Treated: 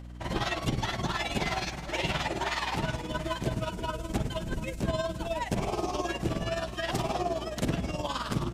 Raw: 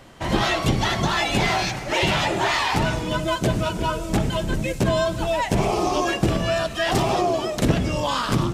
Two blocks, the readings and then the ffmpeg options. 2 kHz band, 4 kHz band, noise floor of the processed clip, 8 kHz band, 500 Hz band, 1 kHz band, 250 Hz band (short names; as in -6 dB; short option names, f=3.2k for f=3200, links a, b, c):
-10.0 dB, -10.0 dB, -40 dBFS, -10.0 dB, -10.0 dB, -10.0 dB, -9.5 dB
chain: -af "aecho=1:1:733:0.188,tremolo=f=19:d=0.65,aeval=exprs='val(0)+0.0178*(sin(2*PI*60*n/s)+sin(2*PI*2*60*n/s)/2+sin(2*PI*3*60*n/s)/3+sin(2*PI*4*60*n/s)/4+sin(2*PI*5*60*n/s)/5)':c=same,volume=-7dB"